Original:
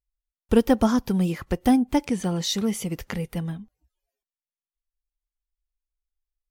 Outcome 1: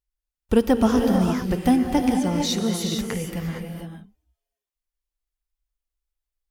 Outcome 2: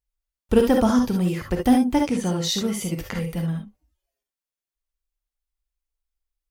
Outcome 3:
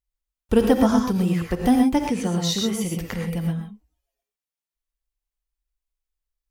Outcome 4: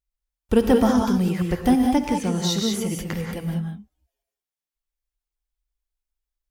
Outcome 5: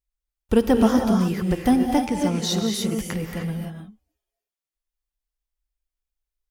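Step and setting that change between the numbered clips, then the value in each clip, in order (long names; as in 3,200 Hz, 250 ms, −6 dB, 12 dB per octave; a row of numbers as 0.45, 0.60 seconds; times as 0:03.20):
reverb whose tail is shaped and stops, gate: 490, 90, 150, 220, 330 milliseconds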